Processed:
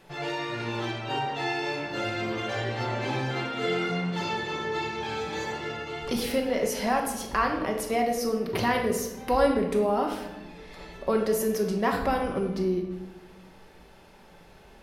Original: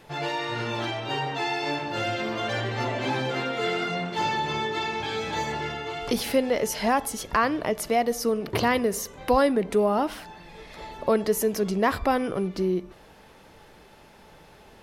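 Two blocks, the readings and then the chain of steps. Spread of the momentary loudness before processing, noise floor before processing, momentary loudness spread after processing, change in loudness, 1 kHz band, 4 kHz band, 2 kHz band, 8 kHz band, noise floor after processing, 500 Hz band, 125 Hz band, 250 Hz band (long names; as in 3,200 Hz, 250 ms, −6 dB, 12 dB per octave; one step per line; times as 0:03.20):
7 LU, −52 dBFS, 8 LU, −2.0 dB, −2.5 dB, −3.0 dB, −2.0 dB, −3.0 dB, −52 dBFS, −1.5 dB, −0.5 dB, −1.5 dB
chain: rectangular room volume 450 cubic metres, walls mixed, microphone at 1.1 metres
level −4.5 dB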